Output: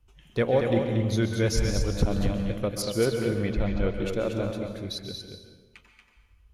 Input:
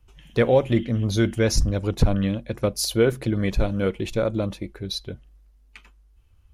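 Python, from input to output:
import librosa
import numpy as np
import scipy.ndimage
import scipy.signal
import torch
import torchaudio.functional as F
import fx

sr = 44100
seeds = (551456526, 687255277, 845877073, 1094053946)

p1 = fx.lowpass(x, sr, hz=3800.0, slope=12, at=(2.82, 3.92))
p2 = p1 + fx.echo_single(p1, sr, ms=233, db=-6.0, dry=0)
p3 = fx.rev_plate(p2, sr, seeds[0], rt60_s=1.1, hf_ratio=0.8, predelay_ms=115, drr_db=5.5)
y = p3 * 10.0 ** (-5.5 / 20.0)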